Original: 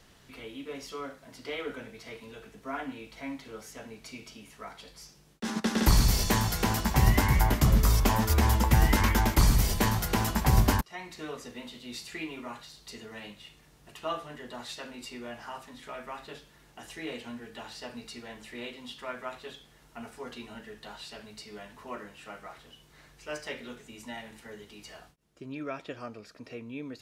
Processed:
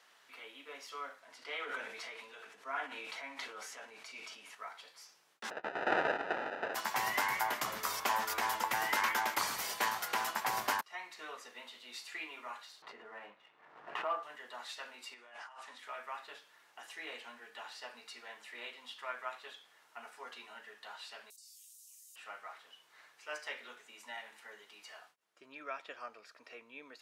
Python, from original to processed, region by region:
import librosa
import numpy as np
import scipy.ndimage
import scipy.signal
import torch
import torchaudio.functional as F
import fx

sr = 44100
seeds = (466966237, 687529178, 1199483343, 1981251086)

y = fx.chain(x, sr, fx.lowpass(hz=11000.0, slope=12),
    fx.sustainer(db_per_s=21.0), at=(1.2, 4.55))
y = fx.spec_clip(y, sr, under_db=30, at=(5.49, 6.74), fade=0.02)
y = fx.sample_hold(y, sr, seeds[0], rate_hz=1100.0, jitter_pct=0, at=(5.49, 6.74), fade=0.02)
y = fx.lowpass(y, sr, hz=2000.0, slope=12, at=(5.49, 6.74), fade=0.02)
y = fx.chain(y, sr, fx.lowpass(hz=1300.0, slope=12),
    fx.leveller(passes=1),
    fx.pre_swell(db_per_s=53.0), at=(12.82, 14.23))
y = fx.chain(y, sr, fx.lowpass(hz=10000.0, slope=24),
    fx.low_shelf(hz=230.0, db=-7.5),
    fx.over_compress(threshold_db=-48.0, ratio=-1.0), at=(15.14, 15.78))
y = fx.chain(y, sr, fx.cheby2_highpass(hz=1600.0, order=4, stop_db=70),
    fx.env_flatten(amount_pct=100), at=(21.3, 22.16))
y = scipy.signal.sosfilt(scipy.signal.butter(2, 1100.0, 'highpass', fs=sr, output='sos'), y)
y = fx.high_shelf(y, sr, hz=2100.0, db=-11.5)
y = y * 10.0 ** (4.0 / 20.0)